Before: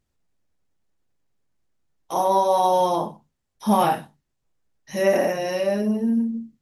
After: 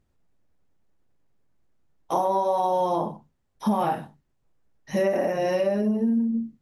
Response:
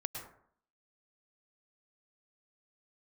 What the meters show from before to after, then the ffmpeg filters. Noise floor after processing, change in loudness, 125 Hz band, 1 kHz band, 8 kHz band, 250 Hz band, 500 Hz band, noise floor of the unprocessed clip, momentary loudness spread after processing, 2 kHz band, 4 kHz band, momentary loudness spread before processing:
−72 dBFS, −3.0 dB, −1.5 dB, −4.0 dB, −9.5 dB, −1.0 dB, −2.5 dB, −77 dBFS, 7 LU, −5.0 dB, −7.5 dB, 11 LU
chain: -af "highshelf=frequency=2300:gain=-10,acompressor=threshold=-26dB:ratio=6,volume=5.5dB"

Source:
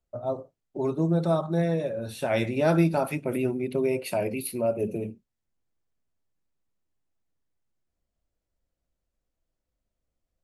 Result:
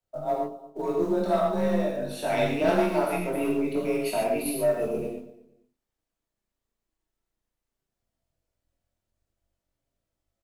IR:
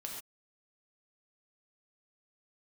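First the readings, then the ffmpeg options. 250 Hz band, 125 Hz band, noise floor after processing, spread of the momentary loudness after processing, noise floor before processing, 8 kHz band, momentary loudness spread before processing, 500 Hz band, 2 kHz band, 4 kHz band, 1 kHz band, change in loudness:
−0.5 dB, −7.5 dB, below −85 dBFS, 7 LU, −84 dBFS, +2.0 dB, 9 LU, +1.5 dB, +1.5 dB, +2.5 dB, +4.0 dB, +0.5 dB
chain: -filter_complex "[0:a]afreqshift=29,flanger=delay=19.5:depth=3.3:speed=0.49,asplit=2[link_01][link_02];[link_02]adelay=234,lowpass=frequency=2000:poles=1,volume=-17.5dB,asplit=2[link_03][link_04];[link_04]adelay=234,lowpass=frequency=2000:poles=1,volume=0.26[link_05];[link_01][link_03][link_05]amix=inputs=3:normalize=0,aeval=exprs='0.211*(cos(1*acos(clip(val(0)/0.211,-1,1)))-cos(1*PI/2))+0.0237*(cos(5*acos(clip(val(0)/0.211,-1,1)))-cos(5*PI/2))':channel_layout=same,asplit=2[link_06][link_07];[link_07]acrusher=bits=5:mode=log:mix=0:aa=0.000001,volume=-8.5dB[link_08];[link_06][link_08]amix=inputs=2:normalize=0[link_09];[1:a]atrim=start_sample=2205[link_10];[link_09][link_10]afir=irnorm=-1:irlink=0,acrossover=split=240[link_11][link_12];[link_11]aeval=exprs='max(val(0),0)':channel_layout=same[link_13];[link_13][link_12]amix=inputs=2:normalize=0"

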